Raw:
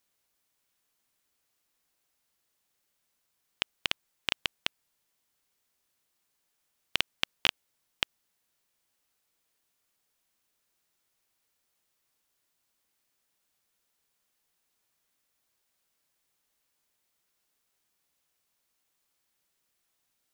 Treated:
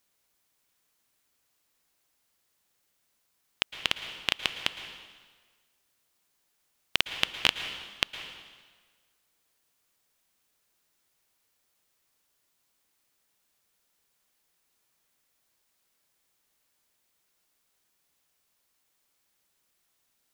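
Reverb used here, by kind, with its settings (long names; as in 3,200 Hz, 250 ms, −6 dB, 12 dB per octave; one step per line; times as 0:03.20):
dense smooth reverb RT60 1.5 s, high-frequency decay 0.9×, pre-delay 100 ms, DRR 8.5 dB
level +3 dB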